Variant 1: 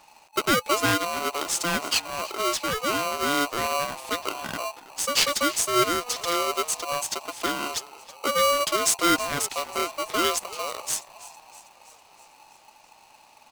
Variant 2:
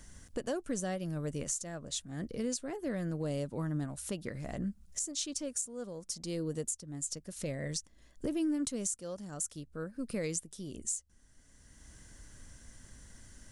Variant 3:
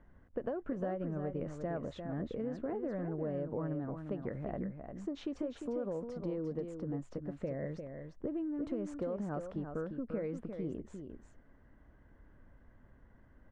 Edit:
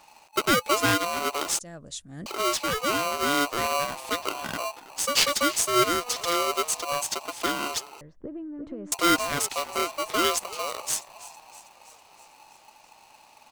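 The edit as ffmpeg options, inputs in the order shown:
ffmpeg -i take0.wav -i take1.wav -i take2.wav -filter_complex "[0:a]asplit=3[link_01][link_02][link_03];[link_01]atrim=end=1.592[link_04];[1:a]atrim=start=1.588:end=2.262[link_05];[link_02]atrim=start=2.258:end=8.012[link_06];[2:a]atrim=start=8.008:end=8.922[link_07];[link_03]atrim=start=8.918[link_08];[link_04][link_05]acrossfade=duration=0.004:curve1=hsin:curve2=hsin[link_09];[link_09][link_06]acrossfade=duration=0.004:curve1=hsin:curve2=hsin[link_10];[link_10][link_07]acrossfade=duration=0.004:curve1=hsin:curve2=hsin[link_11];[link_11][link_08]acrossfade=duration=0.004:curve1=hsin:curve2=hsin" out.wav

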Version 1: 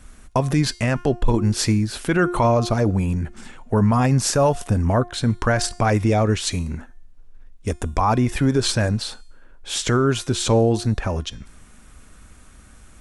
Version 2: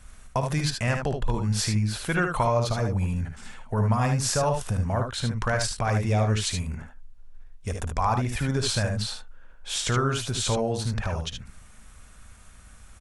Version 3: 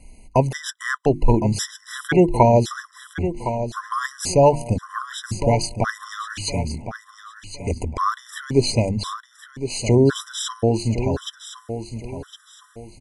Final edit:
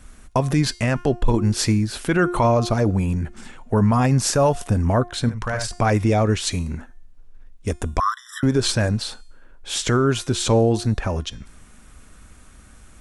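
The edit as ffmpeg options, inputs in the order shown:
ffmpeg -i take0.wav -i take1.wav -i take2.wav -filter_complex "[0:a]asplit=3[link_01][link_02][link_03];[link_01]atrim=end=5.292[link_04];[1:a]atrim=start=5.288:end=5.712[link_05];[link_02]atrim=start=5.708:end=8.002[link_06];[2:a]atrim=start=7.998:end=8.432[link_07];[link_03]atrim=start=8.428[link_08];[link_04][link_05]acrossfade=duration=0.004:curve1=hsin:curve2=hsin[link_09];[link_09][link_06]acrossfade=duration=0.004:curve1=hsin:curve2=hsin[link_10];[link_10][link_07]acrossfade=duration=0.004:curve1=hsin:curve2=hsin[link_11];[link_11][link_08]acrossfade=duration=0.004:curve1=hsin:curve2=hsin" out.wav

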